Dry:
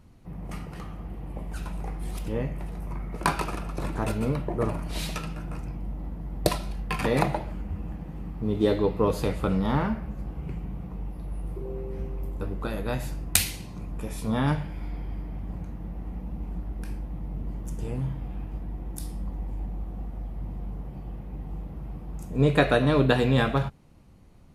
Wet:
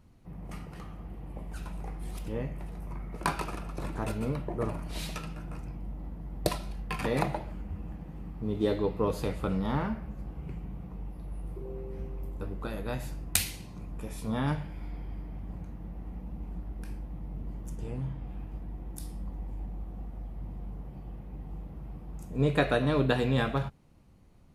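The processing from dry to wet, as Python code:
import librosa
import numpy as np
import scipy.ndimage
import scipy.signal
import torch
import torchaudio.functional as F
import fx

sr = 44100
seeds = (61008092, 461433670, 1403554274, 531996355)

y = fx.high_shelf(x, sr, hz=8700.0, db=-7.5, at=(17.75, 18.28))
y = F.gain(torch.from_numpy(y), -5.0).numpy()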